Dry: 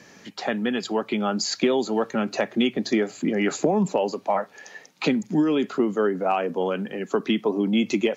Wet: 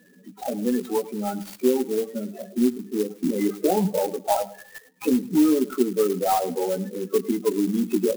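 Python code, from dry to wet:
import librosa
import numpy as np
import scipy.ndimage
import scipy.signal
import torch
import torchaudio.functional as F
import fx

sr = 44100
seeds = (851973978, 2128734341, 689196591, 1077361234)

y = scipy.signal.sosfilt(scipy.signal.butter(2, 120.0, 'highpass', fs=sr, output='sos'), x)
y = fx.high_shelf(y, sr, hz=3700.0, db=-9.0)
y = fx.hum_notches(y, sr, base_hz=50, count=4)
y = fx.hpss(y, sr, part='percussive', gain_db=-13, at=(0.96, 3.03))
y = fx.dynamic_eq(y, sr, hz=1000.0, q=1.7, threshold_db=-42.0, ratio=4.0, max_db=3)
y = fx.spec_topn(y, sr, count=8)
y = fx.doubler(y, sr, ms=16.0, db=-4)
y = fx.echo_feedback(y, sr, ms=106, feedback_pct=26, wet_db=-17.5)
y = fx.clock_jitter(y, sr, seeds[0], jitter_ms=0.057)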